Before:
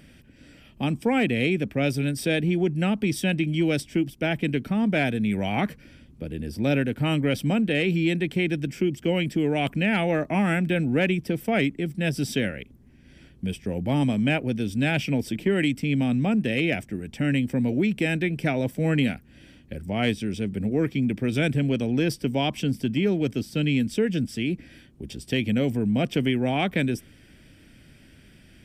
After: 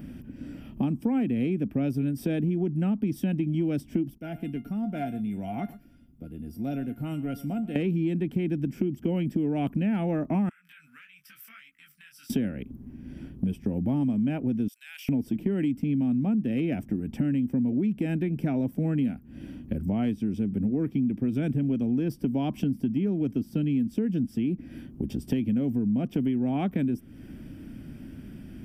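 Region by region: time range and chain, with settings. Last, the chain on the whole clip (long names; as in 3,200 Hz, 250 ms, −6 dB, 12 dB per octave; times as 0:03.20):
0:04.18–0:07.76: high-shelf EQ 5,700 Hz +8.5 dB + tuned comb filter 700 Hz, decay 0.18 s, mix 90% + single-tap delay 116 ms −17.5 dB
0:10.49–0:12.30: elliptic high-pass filter 1,300 Hz + downward compressor 8 to 1, threshold −40 dBFS + micro pitch shift up and down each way 31 cents
0:14.68–0:15.09: inverse Chebyshev high-pass filter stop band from 340 Hz, stop band 70 dB + spectral tilt +3 dB per octave + output level in coarse steps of 20 dB
whole clip: octave-band graphic EQ 250/500/2,000/4,000/8,000 Hz +8/−5/−9/−11/−11 dB; downward compressor 4 to 1, threshold −34 dBFS; level +7.5 dB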